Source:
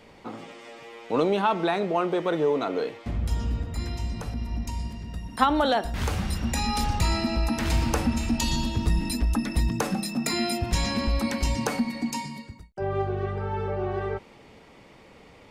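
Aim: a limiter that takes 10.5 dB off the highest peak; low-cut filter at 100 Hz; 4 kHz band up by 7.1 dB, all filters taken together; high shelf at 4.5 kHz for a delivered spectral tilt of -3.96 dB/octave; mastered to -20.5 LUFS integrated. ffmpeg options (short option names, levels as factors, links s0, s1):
-af "highpass=100,equalizer=f=4000:t=o:g=6.5,highshelf=f=4500:g=3.5,volume=2.24,alimiter=limit=0.376:level=0:latency=1"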